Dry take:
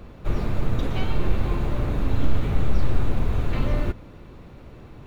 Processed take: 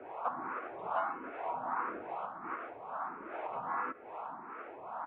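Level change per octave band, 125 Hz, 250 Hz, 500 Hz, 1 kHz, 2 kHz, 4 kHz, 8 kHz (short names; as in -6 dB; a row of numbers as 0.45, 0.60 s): -38.0 dB, -19.5 dB, -9.5 dB, +2.5 dB, -5.0 dB, under -20 dB, n/a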